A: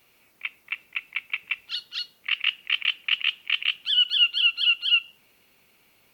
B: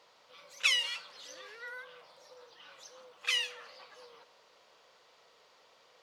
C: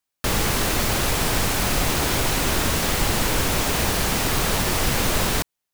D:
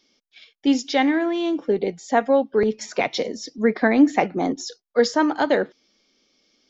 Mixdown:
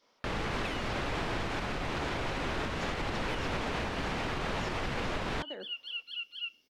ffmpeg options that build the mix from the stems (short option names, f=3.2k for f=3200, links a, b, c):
-filter_complex "[0:a]adelay=1500,volume=-18dB[a];[1:a]equalizer=f=5.7k:w=0.89:g=-10.5,agate=range=-33dB:threshold=-60dB:ratio=3:detection=peak,volume=-1dB[b];[2:a]lowpass=2.9k,lowshelf=f=170:g=-4,volume=2dB[c];[3:a]acompressor=threshold=-24dB:ratio=5,volume=-10dB[d];[a][b][c][d]amix=inputs=4:normalize=0,alimiter=level_in=0.5dB:limit=-24dB:level=0:latency=1:release=432,volume=-0.5dB"